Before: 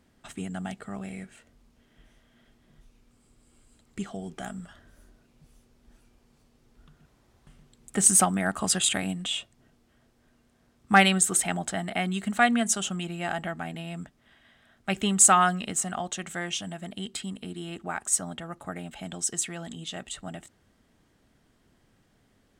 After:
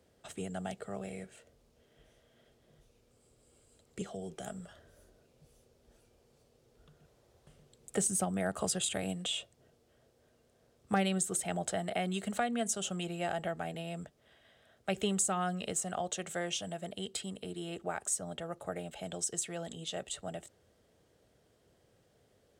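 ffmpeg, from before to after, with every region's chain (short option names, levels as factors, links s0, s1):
-filter_complex "[0:a]asettb=1/sr,asplit=3[s0][s1][s2];[s0]atrim=end=4.014[s3];[s1]atrim=start=4.01:end=4.47,asetpts=PTS-STARTPTS,afade=t=in:d=0.004:c=qsin,afade=t=out:st=0.456:d=0.004:c=qsin,bandreject=f=4600:w=30,acrossover=split=320|3000[s4][s5][s6];[s5]acompressor=threshold=0.00794:ratio=6:attack=3.2:release=140:knee=2.83:detection=peak[s7];[s4][s7][s6]amix=inputs=3:normalize=0[s8];[s2]atrim=start=4.466[s9];[s3][s8]acrossfade=d=0.004:c1=hsin:c2=qsin[s10];[s10][s9]acrossfade=d=0.004:c1=qsin:c2=hsin,equalizer=f=250:t=o:w=1:g=-9,equalizer=f=500:t=o:w=1:g=10,equalizer=f=1000:t=o:w=1:g=-5,equalizer=f=2000:t=o:w=1:g=-4,acrossover=split=290[s11][s12];[s12]acompressor=threshold=0.0355:ratio=5[s13];[s11][s13]amix=inputs=2:normalize=0,highpass=62,volume=0.794"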